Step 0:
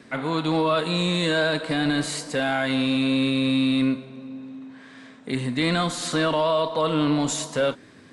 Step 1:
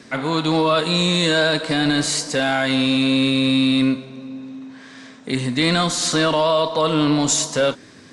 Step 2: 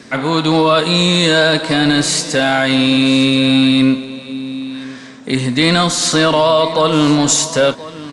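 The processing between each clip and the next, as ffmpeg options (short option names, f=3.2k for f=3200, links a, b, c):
-af "equalizer=f=5.8k:w=1.3:g=8.5,volume=4dB"
-af "aecho=1:1:1026:0.133,volume=5.5dB"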